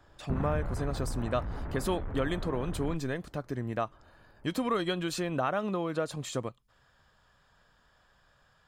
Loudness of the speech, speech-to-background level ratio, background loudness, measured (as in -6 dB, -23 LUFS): -33.5 LUFS, 5.0 dB, -38.5 LUFS